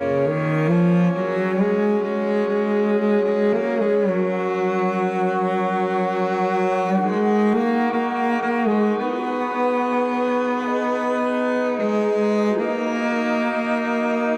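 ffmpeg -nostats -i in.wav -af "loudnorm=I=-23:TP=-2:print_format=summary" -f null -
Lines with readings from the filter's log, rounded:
Input Integrated:    -20.7 LUFS
Input True Peak:     -10.2 dBTP
Input LRA:             1.2 LU
Input Threshold:     -30.7 LUFS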